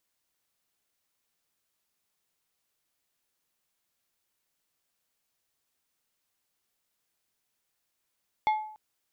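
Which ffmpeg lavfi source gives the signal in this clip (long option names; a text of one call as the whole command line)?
ffmpeg -f lavfi -i "aevalsrc='0.106*pow(10,-3*t/0.61)*sin(2*PI*860*t)+0.0335*pow(10,-3*t/0.321)*sin(2*PI*2150*t)+0.0106*pow(10,-3*t/0.231)*sin(2*PI*3440*t)+0.00335*pow(10,-3*t/0.198)*sin(2*PI*4300*t)+0.00106*pow(10,-3*t/0.165)*sin(2*PI*5590*t)':duration=0.29:sample_rate=44100" out.wav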